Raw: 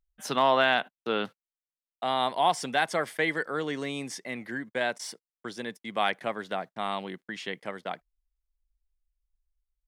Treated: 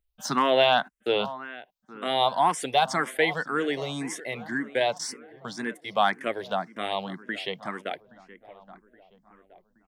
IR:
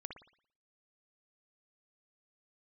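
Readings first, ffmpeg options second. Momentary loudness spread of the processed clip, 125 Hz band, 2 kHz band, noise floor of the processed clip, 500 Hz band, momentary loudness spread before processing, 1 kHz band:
13 LU, +3.0 dB, +0.5 dB, −69 dBFS, +3.5 dB, 14 LU, +3.0 dB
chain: -filter_complex "[0:a]asplit=2[link_01][link_02];[link_02]adelay=822,lowpass=frequency=1900:poles=1,volume=-17dB,asplit=2[link_03][link_04];[link_04]adelay=822,lowpass=frequency=1900:poles=1,volume=0.52,asplit=2[link_05][link_06];[link_06]adelay=822,lowpass=frequency=1900:poles=1,volume=0.52,asplit=2[link_07][link_08];[link_08]adelay=822,lowpass=frequency=1900:poles=1,volume=0.52,asplit=2[link_09][link_10];[link_10]adelay=822,lowpass=frequency=1900:poles=1,volume=0.52[link_11];[link_03][link_05][link_07][link_09][link_11]amix=inputs=5:normalize=0[link_12];[link_01][link_12]amix=inputs=2:normalize=0,asplit=2[link_13][link_14];[link_14]afreqshift=1.9[link_15];[link_13][link_15]amix=inputs=2:normalize=1,volume=6dB"

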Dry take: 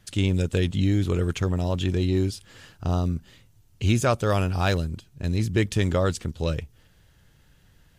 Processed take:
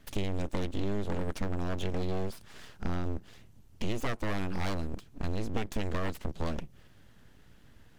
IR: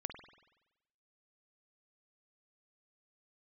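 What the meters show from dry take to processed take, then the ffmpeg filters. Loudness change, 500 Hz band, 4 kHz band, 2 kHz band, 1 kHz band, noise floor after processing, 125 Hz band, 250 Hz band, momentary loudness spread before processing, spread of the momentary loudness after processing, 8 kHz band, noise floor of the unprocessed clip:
−10.5 dB, −10.0 dB, −10.0 dB, −8.5 dB, −8.0 dB, −57 dBFS, −12.5 dB, −9.5 dB, 7 LU, 7 LU, −12.0 dB, −59 dBFS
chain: -af "acompressor=threshold=-30dB:ratio=4,highshelf=frequency=3000:gain=-7.5,aeval=exprs='abs(val(0))':channel_layout=same,volume=2.5dB"

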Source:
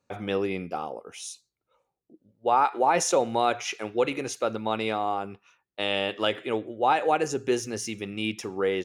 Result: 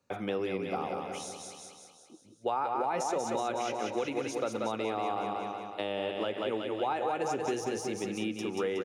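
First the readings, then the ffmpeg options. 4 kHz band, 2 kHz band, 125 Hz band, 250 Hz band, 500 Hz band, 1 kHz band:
−8.5 dB, −8.0 dB, −5.5 dB, −3.5 dB, −5.0 dB, −6.5 dB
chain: -filter_complex "[0:a]asplit=2[link_01][link_02];[link_02]aecho=0:1:184|368|552|736|920|1104|1288:0.501|0.281|0.157|0.088|0.0493|0.0276|0.0155[link_03];[link_01][link_03]amix=inputs=2:normalize=0,alimiter=limit=-14.5dB:level=0:latency=1:release=78,acrossover=split=140|1200[link_04][link_05][link_06];[link_04]acompressor=threshold=-56dB:ratio=4[link_07];[link_05]acompressor=threshold=-30dB:ratio=4[link_08];[link_06]acompressor=threshold=-42dB:ratio=4[link_09];[link_07][link_08][link_09]amix=inputs=3:normalize=0"

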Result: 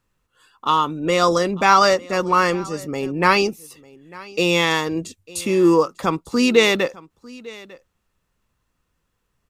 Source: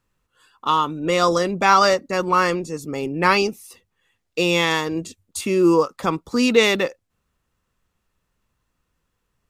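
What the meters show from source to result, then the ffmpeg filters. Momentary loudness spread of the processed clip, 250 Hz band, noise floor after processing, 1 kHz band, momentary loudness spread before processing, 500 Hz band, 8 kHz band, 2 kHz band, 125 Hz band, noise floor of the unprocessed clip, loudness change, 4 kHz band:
14 LU, +1.0 dB, −73 dBFS, +1.0 dB, 12 LU, +1.0 dB, +1.0 dB, +1.0 dB, +1.0 dB, −75 dBFS, +1.0 dB, +1.0 dB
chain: -af "aecho=1:1:899:0.0841,volume=1dB"

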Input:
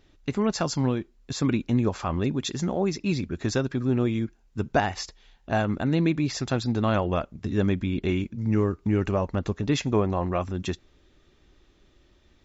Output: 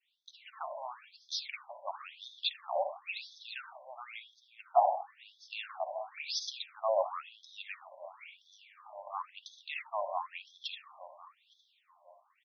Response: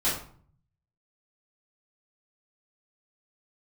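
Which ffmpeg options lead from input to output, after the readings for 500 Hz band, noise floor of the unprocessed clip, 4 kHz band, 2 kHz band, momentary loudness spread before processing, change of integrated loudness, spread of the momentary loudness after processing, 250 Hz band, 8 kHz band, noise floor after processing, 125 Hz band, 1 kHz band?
−9.5 dB, −61 dBFS, −3.5 dB, −9.5 dB, 7 LU, −10.5 dB, 21 LU, below −40 dB, can't be measured, −72 dBFS, below −40 dB, −2.5 dB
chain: -filter_complex "[0:a]asplit=2[link_01][link_02];[link_02]adelay=430,lowpass=frequency=3800:poles=1,volume=-15dB,asplit=2[link_03][link_04];[link_04]adelay=430,lowpass=frequency=3800:poles=1,volume=0.55,asplit=2[link_05][link_06];[link_06]adelay=430,lowpass=frequency=3800:poles=1,volume=0.55,asplit=2[link_07][link_08];[link_08]adelay=430,lowpass=frequency=3800:poles=1,volume=0.55,asplit=2[link_09][link_10];[link_10]adelay=430,lowpass=frequency=3800:poles=1,volume=0.55[link_11];[link_01][link_03][link_05][link_07][link_09][link_11]amix=inputs=6:normalize=0,adynamicsmooth=sensitivity=6:basefreq=5600,asplit=2[link_12][link_13];[1:a]atrim=start_sample=2205,adelay=51[link_14];[link_13][link_14]afir=irnorm=-1:irlink=0,volume=-18dB[link_15];[link_12][link_15]amix=inputs=2:normalize=0,adynamicequalizer=threshold=0.01:dfrequency=980:dqfactor=1.2:tfrequency=980:tqfactor=1.2:attack=5:release=100:ratio=0.375:range=2.5:mode=cutabove:tftype=bell,dynaudnorm=framelen=310:gausssize=5:maxgain=7dB,equalizer=frequency=1600:width_type=o:width=0.54:gain=-12.5,afftfilt=real='re*between(b*sr/1024,730*pow(4700/730,0.5+0.5*sin(2*PI*0.97*pts/sr))/1.41,730*pow(4700/730,0.5+0.5*sin(2*PI*0.97*pts/sr))*1.41)':imag='im*between(b*sr/1024,730*pow(4700/730,0.5+0.5*sin(2*PI*0.97*pts/sr))/1.41,730*pow(4700/730,0.5+0.5*sin(2*PI*0.97*pts/sr))*1.41)':win_size=1024:overlap=0.75,volume=-4dB"

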